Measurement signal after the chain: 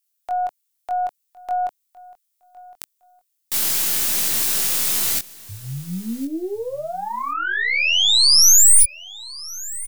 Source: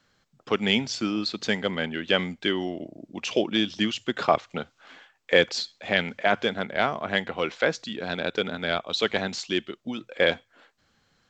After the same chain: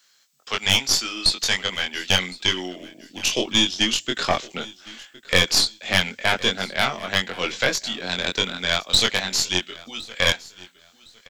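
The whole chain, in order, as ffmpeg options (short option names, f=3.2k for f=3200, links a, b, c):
-filter_complex "[0:a]aderivative,acrossover=split=370[a][b];[a]dynaudnorm=f=500:g=11:m=14dB[c];[b]volume=22.5dB,asoftclip=hard,volume=-22.5dB[d];[c][d]amix=inputs=2:normalize=0,aeval=exprs='0.1*(cos(1*acos(clip(val(0)/0.1,-1,1)))-cos(1*PI/2))+0.0447*(cos(2*acos(clip(val(0)/0.1,-1,1)))-cos(2*PI/2))':c=same,asplit=2[e][f];[f]adelay=22,volume=-3dB[g];[e][g]amix=inputs=2:normalize=0,asplit=2[h][i];[i]aecho=0:1:1061|2122:0.0891|0.0214[j];[h][j]amix=inputs=2:normalize=0,alimiter=level_in=15dB:limit=-1dB:release=50:level=0:latency=1,volume=-1dB"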